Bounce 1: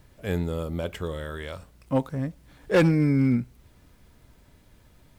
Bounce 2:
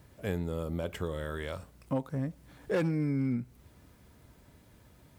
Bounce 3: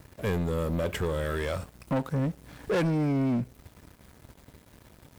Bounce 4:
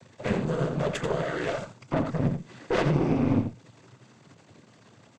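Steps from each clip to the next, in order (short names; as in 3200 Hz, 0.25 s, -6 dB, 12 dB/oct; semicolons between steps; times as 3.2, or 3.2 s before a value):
HPF 61 Hz; bell 3400 Hz -3 dB 2.1 oct; compressor 3:1, threshold -30 dBFS, peak gain reduction 10.5 dB
sample leveller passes 3; gain -2 dB
noise vocoder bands 16; added harmonics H 4 -15 dB, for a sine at -13.5 dBFS; echo 86 ms -8.5 dB; gain +1.5 dB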